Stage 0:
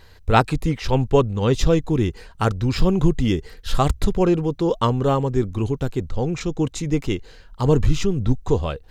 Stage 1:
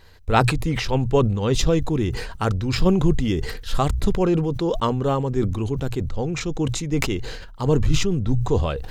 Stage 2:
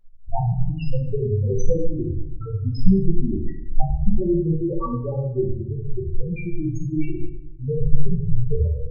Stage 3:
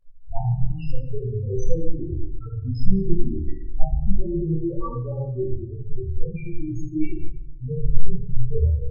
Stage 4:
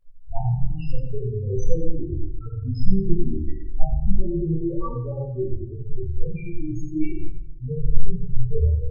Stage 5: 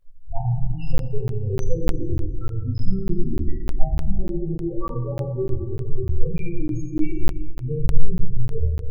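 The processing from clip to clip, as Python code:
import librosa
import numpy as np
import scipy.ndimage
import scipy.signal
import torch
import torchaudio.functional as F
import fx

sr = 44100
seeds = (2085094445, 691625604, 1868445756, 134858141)

y1 = fx.hum_notches(x, sr, base_hz=60, count=2)
y1 = fx.sustainer(y1, sr, db_per_s=46.0)
y1 = F.gain(torch.from_numpy(y1), -2.5).numpy()
y2 = fx.high_shelf(y1, sr, hz=4300.0, db=8.0)
y2 = fx.spec_topn(y2, sr, count=2)
y2 = fx.room_shoebox(y2, sr, seeds[0], volume_m3=180.0, walls='mixed', distance_m=0.99)
y2 = F.gain(torch.from_numpy(y2), -2.0).numpy()
y3 = fx.chorus_voices(y2, sr, voices=4, hz=0.38, base_ms=25, depth_ms=1.8, mix_pct=60)
y3 = F.gain(torch.from_numpy(y3), -1.0).numpy()
y4 = y3 + 10.0 ** (-12.0 / 20.0) * np.pad(y3, (int(92 * sr / 1000.0), 0))[:len(y3)]
y5 = fx.rider(y4, sr, range_db=5, speed_s=0.5)
y5 = fx.rev_plate(y5, sr, seeds[1], rt60_s=3.0, hf_ratio=0.6, predelay_ms=0, drr_db=10.0)
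y5 = fx.buffer_crackle(y5, sr, first_s=0.98, period_s=0.3, block=512, kind='zero')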